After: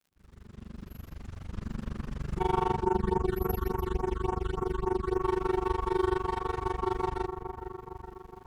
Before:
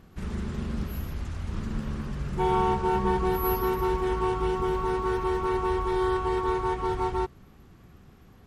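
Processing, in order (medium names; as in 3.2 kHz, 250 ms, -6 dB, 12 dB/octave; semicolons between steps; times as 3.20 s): fade-in on the opening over 2.27 s; feedback echo behind a low-pass 434 ms, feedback 58%, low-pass 1.6 kHz, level -8 dB; AM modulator 24 Hz, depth 95%; crackle 110 per s -54 dBFS; 2.83–5.22 s: phase shifter stages 8, 3.5 Hz, lowest notch 650–4400 Hz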